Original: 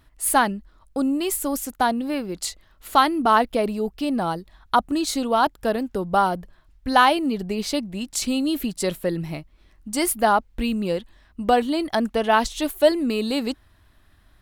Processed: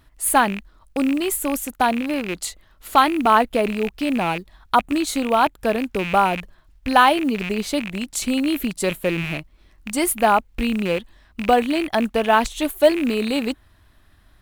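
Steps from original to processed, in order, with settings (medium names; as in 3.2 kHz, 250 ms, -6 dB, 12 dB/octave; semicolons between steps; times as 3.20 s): rattle on loud lows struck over -35 dBFS, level -19 dBFS; short-mantissa float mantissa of 4-bit; dynamic bell 5.1 kHz, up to -7 dB, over -46 dBFS, Q 2.5; trim +2 dB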